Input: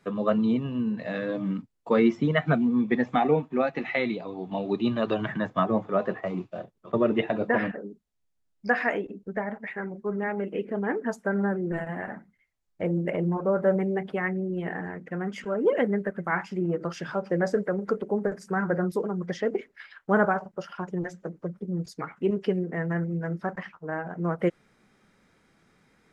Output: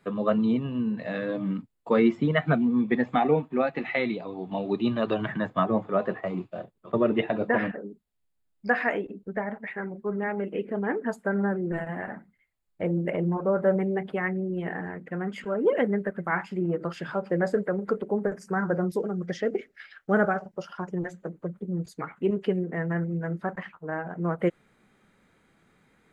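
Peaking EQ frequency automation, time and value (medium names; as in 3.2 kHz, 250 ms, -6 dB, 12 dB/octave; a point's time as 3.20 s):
peaking EQ -14.5 dB 0.24 oct
18.24 s 5.8 kHz
19.06 s 980 Hz
20.44 s 980 Hz
21.03 s 5.4 kHz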